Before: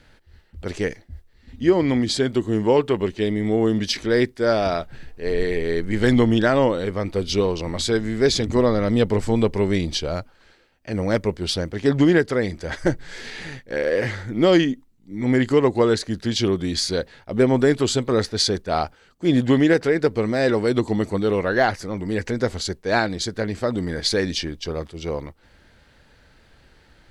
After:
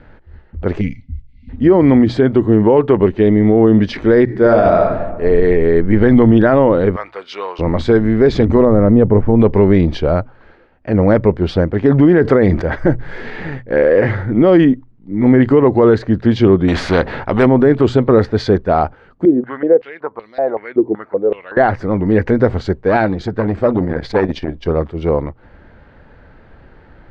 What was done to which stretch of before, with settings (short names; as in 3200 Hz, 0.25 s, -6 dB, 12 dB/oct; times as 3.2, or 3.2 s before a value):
0.81–1.49 spectral gain 280–2000 Hz -28 dB
4.24–4.79 reverb throw, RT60 1.2 s, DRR 2.5 dB
5.53–6.11 Bessel low-pass 4800 Hz
6.96–7.59 Chebyshev high-pass 1300 Hz
8.65–9.4 tape spacing loss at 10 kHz 42 dB
12.21–12.62 fast leveller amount 50%
16.68–17.46 spectral compressor 2:1
19.25–21.57 stepped band-pass 5.3 Hz 360–4100 Hz
22.88–24.66 core saturation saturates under 1300 Hz
whole clip: LPF 1400 Hz 12 dB/oct; de-hum 61.11 Hz, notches 2; maximiser +13 dB; gain -1 dB